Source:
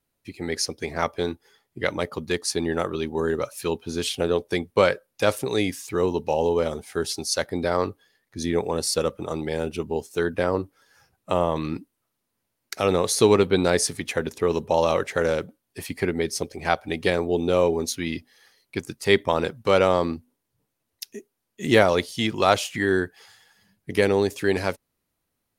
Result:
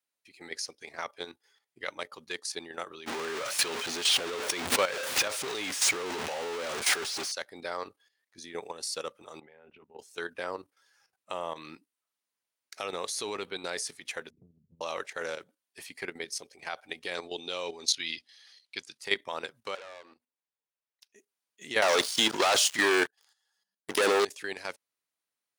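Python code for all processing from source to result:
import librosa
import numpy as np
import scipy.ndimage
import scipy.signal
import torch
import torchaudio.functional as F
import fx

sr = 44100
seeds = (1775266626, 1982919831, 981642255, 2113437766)

y = fx.chain(x, sr, fx.zero_step(step_db=-18.5),
    fx.high_shelf(hz=7600.0, db=-9.5),
    fx.pre_swell(db_per_s=22.0), at=(3.06, 7.32))
y = fx.chain(y, sr, fx.lowpass(hz=2300.0, slope=24),
    fx.notch(hz=320.0, q=7.9),
    fx.level_steps(step_db=12), at=(9.4, 9.99))
y = fx.chain(y, sr, fx.cheby2_lowpass(hz=630.0, order=4, stop_db=60),
    fx.tube_stage(drive_db=23.0, bias=0.25),
    fx.band_squash(depth_pct=100), at=(14.3, 14.81))
y = fx.chain(y, sr, fx.lowpass(hz=11000.0, slope=12),
    fx.peak_eq(hz=3900.0, db=11.5, octaves=1.4), at=(17.15, 18.98))
y = fx.chain(y, sr, fx.bass_treble(bass_db=-15, treble_db=-8),
    fx.level_steps(step_db=9),
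    fx.tube_stage(drive_db=32.0, bias=0.4), at=(19.75, 21.16))
y = fx.chain(y, sr, fx.highpass(hz=230.0, slope=6),
    fx.peak_eq(hz=2300.0, db=-12.5, octaves=0.5),
    fx.leveller(passes=5), at=(21.82, 24.25))
y = fx.highpass(y, sr, hz=1500.0, slope=6)
y = fx.peak_eq(y, sr, hz=13000.0, db=-13.0, octaves=0.27)
y = fx.level_steps(y, sr, step_db=11)
y = y * librosa.db_to_amplitude(-1.5)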